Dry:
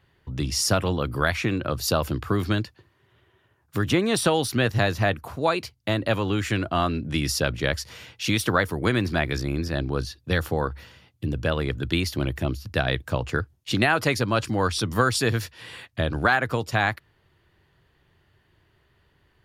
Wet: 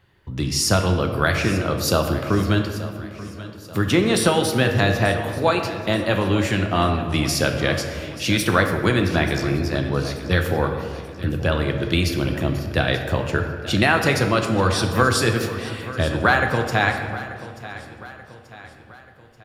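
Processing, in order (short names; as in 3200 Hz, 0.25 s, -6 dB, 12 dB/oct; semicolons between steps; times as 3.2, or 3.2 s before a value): feedback echo 0.884 s, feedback 48%, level -16 dB; on a send at -4 dB: reverb RT60 2.1 s, pre-delay 5 ms; on the sum: gain +2.5 dB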